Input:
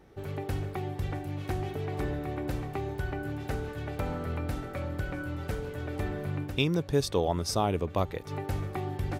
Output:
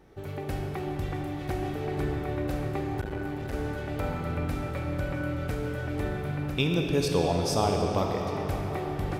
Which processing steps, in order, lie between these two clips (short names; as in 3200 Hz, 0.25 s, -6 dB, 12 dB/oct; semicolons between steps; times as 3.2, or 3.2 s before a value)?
reverb RT60 4.4 s, pre-delay 4 ms, DRR 0.5 dB; 3.01–3.53 core saturation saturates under 340 Hz